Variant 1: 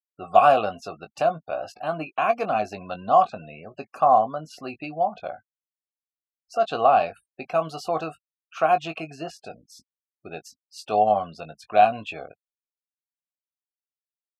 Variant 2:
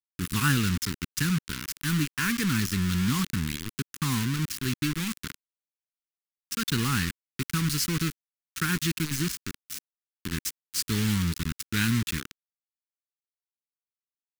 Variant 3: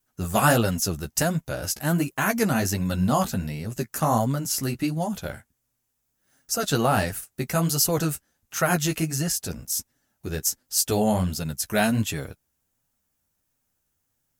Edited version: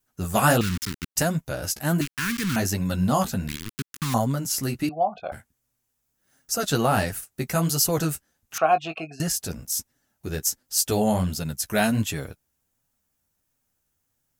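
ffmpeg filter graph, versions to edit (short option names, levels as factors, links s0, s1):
-filter_complex "[1:a]asplit=3[s0][s1][s2];[0:a]asplit=2[s3][s4];[2:a]asplit=6[s5][s6][s7][s8][s9][s10];[s5]atrim=end=0.612[s11];[s0]atrim=start=0.608:end=1.162[s12];[s6]atrim=start=1.158:end=2.012[s13];[s1]atrim=start=2.008:end=2.562[s14];[s7]atrim=start=2.558:end=3.482[s15];[s2]atrim=start=3.478:end=4.142[s16];[s8]atrim=start=4.138:end=4.892[s17];[s3]atrim=start=4.888:end=5.322[s18];[s9]atrim=start=5.318:end=8.582[s19];[s4]atrim=start=8.578:end=9.202[s20];[s10]atrim=start=9.198[s21];[s11][s12]acrossfade=d=0.004:c1=hsin:c2=hsin[s22];[s22][s13]acrossfade=d=0.004:c1=hsin:c2=hsin[s23];[s23][s14]acrossfade=d=0.004:c1=hsin:c2=hsin[s24];[s24][s15]acrossfade=d=0.004:c1=hsin:c2=hsin[s25];[s25][s16]acrossfade=d=0.004:c1=hsin:c2=hsin[s26];[s26][s17]acrossfade=d=0.004:c1=hsin:c2=hsin[s27];[s27][s18]acrossfade=d=0.004:c1=hsin:c2=hsin[s28];[s28][s19]acrossfade=d=0.004:c1=hsin:c2=hsin[s29];[s29][s20]acrossfade=d=0.004:c1=hsin:c2=hsin[s30];[s30][s21]acrossfade=d=0.004:c1=hsin:c2=hsin"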